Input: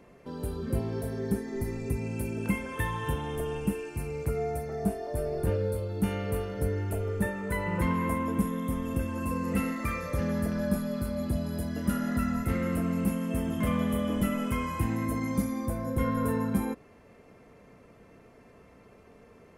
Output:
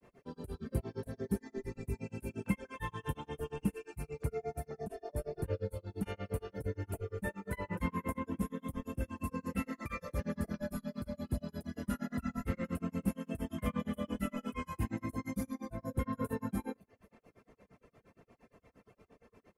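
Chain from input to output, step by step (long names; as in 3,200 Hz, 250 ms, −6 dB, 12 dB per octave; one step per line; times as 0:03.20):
repeating echo 237 ms, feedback 43%, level −23.5 dB
granular cloud 127 ms, grains 8.6 per second, spray 24 ms, pitch spread up and down by 0 semitones
reverb reduction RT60 0.7 s
level −3.5 dB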